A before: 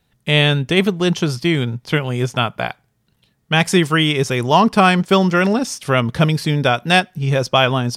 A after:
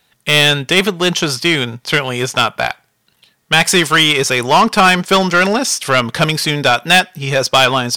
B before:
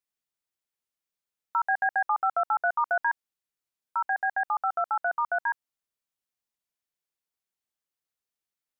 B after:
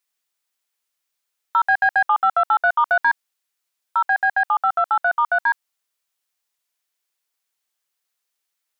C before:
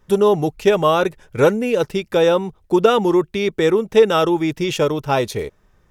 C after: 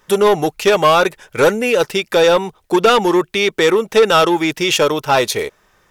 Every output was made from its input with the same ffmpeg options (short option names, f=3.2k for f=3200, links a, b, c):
-filter_complex "[0:a]asplit=2[a][b];[b]highpass=f=720:p=1,volume=16dB,asoftclip=type=tanh:threshold=-1dB[c];[a][c]amix=inputs=2:normalize=0,lowpass=f=1k:p=1,volume=-6dB,crystalizer=i=8.5:c=0,volume=-2dB"